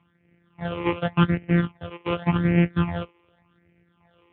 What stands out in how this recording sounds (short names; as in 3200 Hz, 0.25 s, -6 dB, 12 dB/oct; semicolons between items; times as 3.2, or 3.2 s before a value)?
a buzz of ramps at a fixed pitch in blocks of 256 samples; random-step tremolo; phasing stages 8, 0.87 Hz, lowest notch 200–1100 Hz; AMR-NB